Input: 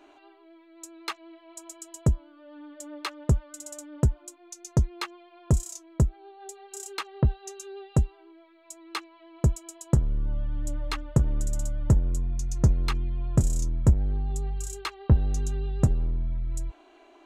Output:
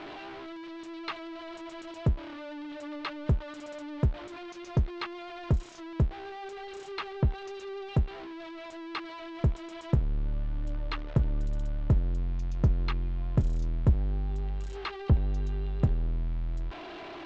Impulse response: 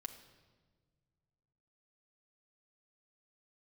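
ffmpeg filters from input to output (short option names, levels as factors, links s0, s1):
-af "aeval=exprs='val(0)+0.5*0.0237*sgn(val(0))':c=same,lowpass=f=4100:w=0.5412,lowpass=f=4100:w=1.3066,volume=0.596"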